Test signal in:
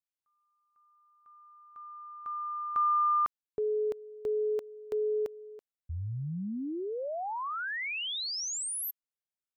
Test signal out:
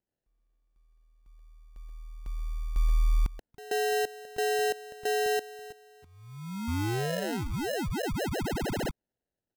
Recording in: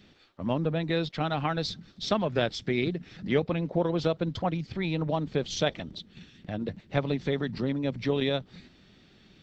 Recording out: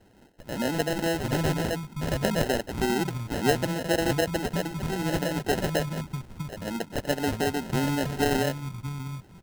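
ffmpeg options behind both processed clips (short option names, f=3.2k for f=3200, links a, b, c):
-filter_complex "[0:a]acrossover=split=180|710[a][b][c];[b]adelay=130[d];[a]adelay=780[e];[e][d][c]amix=inputs=3:normalize=0,acrusher=samples=38:mix=1:aa=0.000001,volume=4dB"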